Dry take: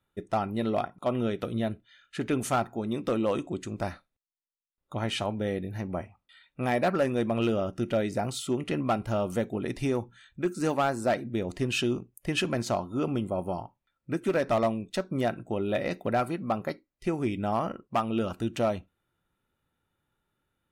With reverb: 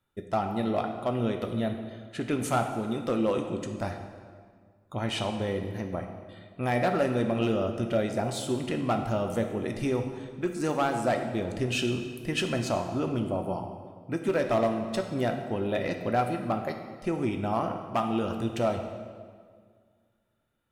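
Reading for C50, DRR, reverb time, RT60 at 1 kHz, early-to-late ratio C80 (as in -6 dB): 6.5 dB, 4.5 dB, 1.9 s, 1.8 s, 8.0 dB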